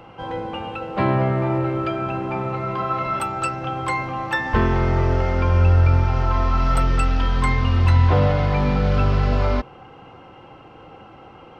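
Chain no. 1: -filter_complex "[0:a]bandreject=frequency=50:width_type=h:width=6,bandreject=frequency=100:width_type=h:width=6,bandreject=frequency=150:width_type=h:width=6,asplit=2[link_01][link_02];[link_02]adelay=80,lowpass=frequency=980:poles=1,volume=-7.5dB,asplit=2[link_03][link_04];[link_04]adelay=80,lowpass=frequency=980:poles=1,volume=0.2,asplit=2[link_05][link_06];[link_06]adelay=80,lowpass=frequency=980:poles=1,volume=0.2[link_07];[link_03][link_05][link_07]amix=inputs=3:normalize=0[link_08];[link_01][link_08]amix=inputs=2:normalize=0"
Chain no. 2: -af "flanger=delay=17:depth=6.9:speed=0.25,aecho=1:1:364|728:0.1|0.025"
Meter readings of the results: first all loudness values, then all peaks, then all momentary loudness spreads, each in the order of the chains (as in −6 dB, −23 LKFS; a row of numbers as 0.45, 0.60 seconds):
−20.0, −23.0 LKFS; −4.0, −7.0 dBFS; 12, 11 LU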